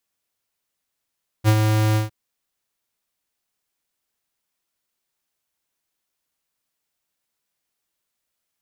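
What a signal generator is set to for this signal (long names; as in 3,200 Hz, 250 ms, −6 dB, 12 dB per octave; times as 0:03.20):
note with an ADSR envelope square 108 Hz, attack 44 ms, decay 62 ms, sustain −5 dB, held 0.52 s, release 138 ms −13 dBFS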